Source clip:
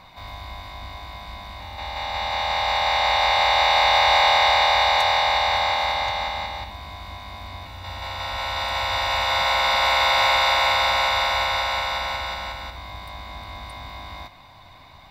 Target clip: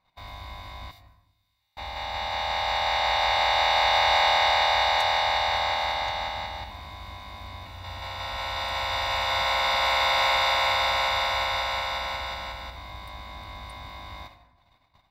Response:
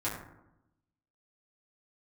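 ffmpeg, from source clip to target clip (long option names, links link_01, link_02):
-filter_complex "[0:a]asettb=1/sr,asplit=3[link_01][link_02][link_03];[link_01]atrim=end=0.914[link_04];[link_02]atrim=start=0.91:end=1.77,asetpts=PTS-STARTPTS,afade=type=in:duration=0.004:curve=qsin,afade=type=out:start_time=0.856:duration=0.004:curve=qsin,aderivative[link_05];[link_03]atrim=start=1.766[link_06];[link_04][link_05]acrossfade=duration=0.004:curve1=hsin:curve2=qsin[link_07];[link_07][link_06]acrossfade=duration=0.004:curve1=qsin:curve2=hsin,agate=range=-23dB:threshold=-44dB:ratio=16:detection=peak,asplit=2[link_08][link_09];[1:a]atrim=start_sample=2205,adelay=148[link_10];[link_09][link_10]afir=irnorm=-1:irlink=0,volume=-20dB[link_11];[link_08][link_11]amix=inputs=2:normalize=0,volume=-4dB"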